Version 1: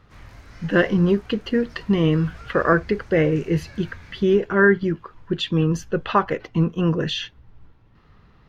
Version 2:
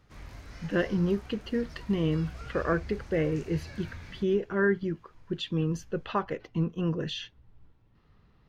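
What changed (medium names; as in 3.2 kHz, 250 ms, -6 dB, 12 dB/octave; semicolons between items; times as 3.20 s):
speech -8.5 dB; master: add peaking EQ 1.4 kHz -3.5 dB 1.6 oct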